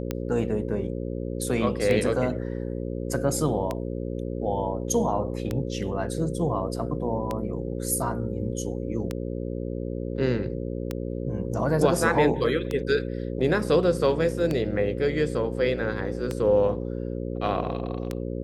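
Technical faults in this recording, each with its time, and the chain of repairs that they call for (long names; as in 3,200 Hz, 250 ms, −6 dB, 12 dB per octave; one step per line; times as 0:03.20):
mains buzz 60 Hz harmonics 9 −31 dBFS
scratch tick 33 1/3 rpm −14 dBFS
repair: click removal
hum removal 60 Hz, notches 9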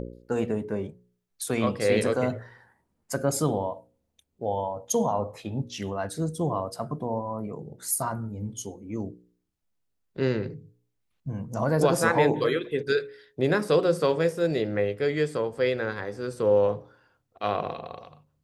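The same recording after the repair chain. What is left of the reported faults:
none of them is left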